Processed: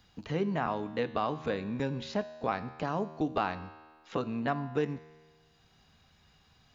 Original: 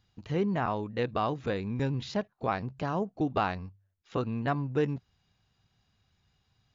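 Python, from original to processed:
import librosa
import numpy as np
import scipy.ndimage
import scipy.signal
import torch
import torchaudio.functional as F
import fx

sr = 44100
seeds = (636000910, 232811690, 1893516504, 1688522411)

y = fx.peak_eq(x, sr, hz=110.0, db=-7.5, octaves=0.86)
y = fx.notch(y, sr, hz=360.0, q=12.0)
y = fx.comb_fb(y, sr, f0_hz=78.0, decay_s=1.2, harmonics='all', damping=0.0, mix_pct=60)
y = fx.band_squash(y, sr, depth_pct=40)
y = F.gain(torch.from_numpy(y), 6.0).numpy()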